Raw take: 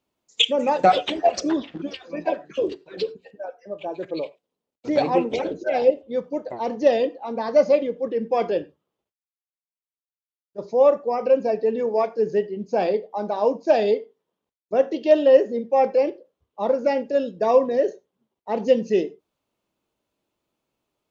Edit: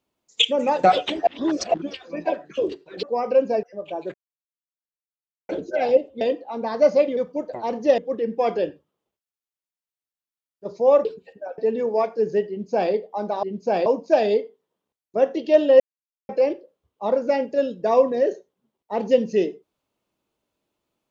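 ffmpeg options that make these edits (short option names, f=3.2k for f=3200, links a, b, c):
-filter_complex "[0:a]asplit=16[a][b][c][d][e][f][g][h][i][j][k][l][m][n][o][p];[a]atrim=end=1.272[q];[b]atrim=start=1.268:end=1.742,asetpts=PTS-STARTPTS,areverse[r];[c]atrim=start=1.738:end=3.032[s];[d]atrim=start=10.978:end=11.582[t];[e]atrim=start=3.558:end=4.07,asetpts=PTS-STARTPTS,afade=t=out:st=0.508:d=0.004:c=hsin[u];[f]atrim=start=4.07:end=5.42,asetpts=PTS-STARTPTS,volume=0[v];[g]atrim=start=5.42:end=6.142,asetpts=PTS-STARTPTS,afade=t=in:d=0.004:c=hsin[w];[h]atrim=start=6.948:end=7.912[x];[i]atrim=start=6.138:end=6.952[y];[j]atrim=start=7.908:end=10.982[z];[k]atrim=start=3.028:end=3.562[aa];[l]atrim=start=11.578:end=13.432[ab];[m]atrim=start=12.488:end=12.922[ac];[n]atrim=start=13.428:end=15.37,asetpts=PTS-STARTPTS,afade=t=out:st=1.938:d=0.004:c=hsin[ad];[o]atrim=start=15.37:end=15.86,asetpts=PTS-STARTPTS,volume=0[ae];[p]atrim=start=15.86,asetpts=PTS-STARTPTS,afade=t=in:d=0.004:c=hsin[af];[q][r]acrossfade=d=0.004:c1=hsin:c2=hsin[ag];[ag][s]acrossfade=d=0.004:c1=hsin:c2=hsin[ah];[ah][t]acrossfade=d=0.004:c1=hsin:c2=hsin[ai];[u][v][w]concat=n=3:v=0:a=1[aj];[ai][aj]acrossfade=d=0.004:c1=hsin:c2=hsin[ak];[ak][x]acrossfade=d=0.004:c1=hsin:c2=hsin[al];[al][y]acrossfade=d=0.004:c1=hsin:c2=hsin[am];[am][z]acrossfade=d=0.004:c1=hsin:c2=hsin[an];[an][aa]acrossfade=d=0.004:c1=hsin:c2=hsin[ao];[ao][ab]acrossfade=d=0.004:c1=hsin:c2=hsin[ap];[ap][ac]acrossfade=d=0.004:c1=hsin:c2=hsin[aq];[ad][ae][af]concat=n=3:v=0:a=1[ar];[aq][ar]acrossfade=d=0.004:c1=hsin:c2=hsin"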